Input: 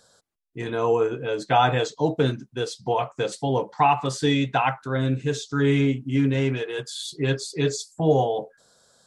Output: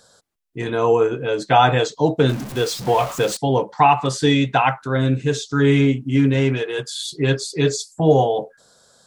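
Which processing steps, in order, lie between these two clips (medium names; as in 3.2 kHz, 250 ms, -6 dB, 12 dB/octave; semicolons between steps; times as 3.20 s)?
2.29–3.37 s: jump at every zero crossing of -31.5 dBFS; trim +5 dB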